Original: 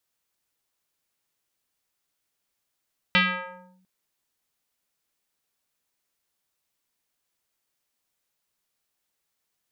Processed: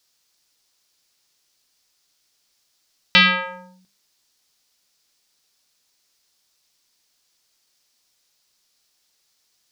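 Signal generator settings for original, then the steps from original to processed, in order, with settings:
two-operator FM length 0.70 s, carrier 186 Hz, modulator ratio 3.88, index 4.4, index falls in 0.66 s linear, decay 0.85 s, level −14 dB
parametric band 5,000 Hz +12 dB 1.2 octaves
mains-hum notches 50/100/150/200 Hz
in parallel at +2 dB: brickwall limiter −15.5 dBFS

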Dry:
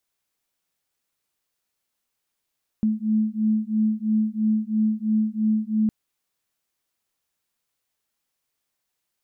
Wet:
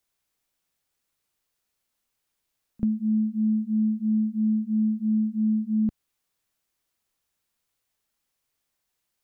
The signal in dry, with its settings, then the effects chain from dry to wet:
two tones that beat 215 Hz, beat 3 Hz, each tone −22.5 dBFS 3.06 s
low-shelf EQ 92 Hz +6.5 dB
backwards echo 36 ms −22.5 dB
downward compressor 2 to 1, threshold −23 dBFS

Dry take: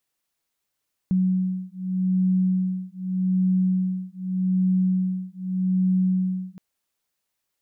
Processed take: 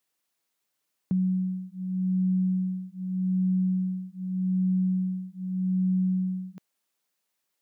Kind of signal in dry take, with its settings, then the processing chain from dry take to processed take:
two tones that beat 185 Hz, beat 0.83 Hz, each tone −23 dBFS 5.47 s
high-pass filter 140 Hz
dynamic equaliser 200 Hz, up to −3 dB, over −32 dBFS

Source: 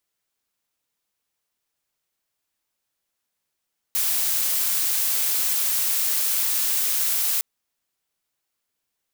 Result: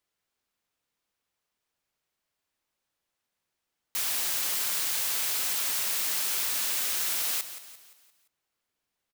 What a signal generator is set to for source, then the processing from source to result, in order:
noise blue, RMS −22.5 dBFS 3.46 s
high-shelf EQ 5,600 Hz −8 dB
on a send: repeating echo 173 ms, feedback 46%, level −12.5 dB

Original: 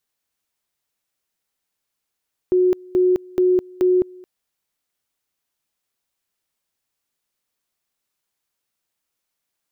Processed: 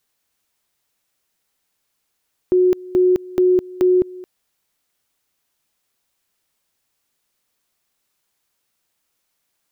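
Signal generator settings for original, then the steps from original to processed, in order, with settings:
tone at two levels in turn 365 Hz −12.5 dBFS, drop 25.5 dB, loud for 0.21 s, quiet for 0.22 s, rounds 4
dynamic equaliser 780 Hz, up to −5 dB, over −32 dBFS, Q 0.92
in parallel at +2 dB: brickwall limiter −22.5 dBFS

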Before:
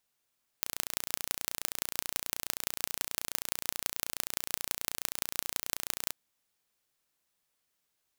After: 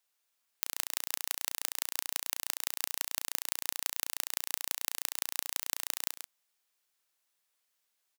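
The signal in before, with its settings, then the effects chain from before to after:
impulse train 29.4 per second, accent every 5, −1.5 dBFS 5.48 s
high-pass filter 710 Hz 6 dB per octave
single-tap delay 135 ms −9.5 dB

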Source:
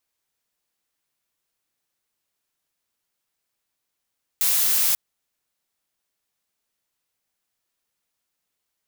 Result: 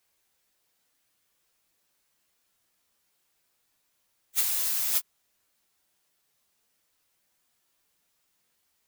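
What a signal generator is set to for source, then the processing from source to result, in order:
noise blue, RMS −20 dBFS 0.54 s
random phases in long frames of 100 ms
compressor whose output falls as the input rises −27 dBFS, ratio −1

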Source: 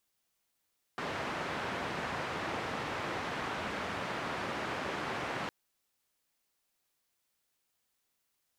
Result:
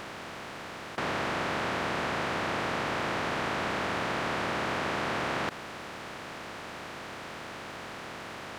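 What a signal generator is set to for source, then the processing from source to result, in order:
band-limited noise 90–1,600 Hz, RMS −37 dBFS 4.51 s
compressor on every frequency bin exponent 0.2

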